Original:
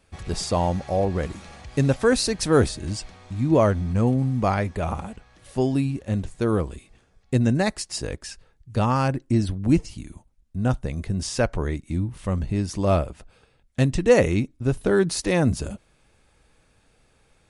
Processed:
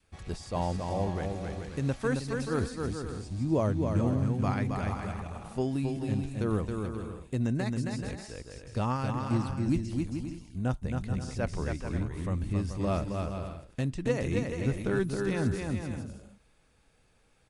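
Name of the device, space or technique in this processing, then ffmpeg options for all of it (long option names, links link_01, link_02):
de-esser from a sidechain: -filter_complex "[0:a]asettb=1/sr,asplit=3[link_01][link_02][link_03];[link_01]atrim=end=2.594[link_04];[link_02]atrim=start=2.59:end=3.83,asetpts=PTS-STARTPTS,afade=type=in:duration=0.004:curve=qsin,afade=type=out:start_time=1.236:duration=0.004:curve=qsin,equalizer=frequency=1800:width=0.84:gain=-6[link_05];[link_03]atrim=start=3.826[link_06];[link_04][link_05]acrossfade=duration=0.004:curve1=hsin:curve2=qsin[link_07];[link_07][link_06]acrossfade=duration=0.004:curve1=qsin:curve2=hsin,asplit=2[link_08][link_09];[link_09]highpass=frequency=4600:width=0.5412,highpass=frequency=4600:width=1.3066,apad=whole_len=771626[link_10];[link_08][link_10]sidechaincompress=threshold=-41dB:ratio=3:attack=1.8:release=90,aecho=1:1:270|432|529.2|587.5|622.5:0.631|0.398|0.251|0.158|0.1,adynamicequalizer=threshold=0.0141:dfrequency=590:dqfactor=1.5:tfrequency=590:tqfactor=1.5:attack=5:release=100:ratio=0.375:range=3:mode=cutabove:tftype=bell,volume=-7.5dB"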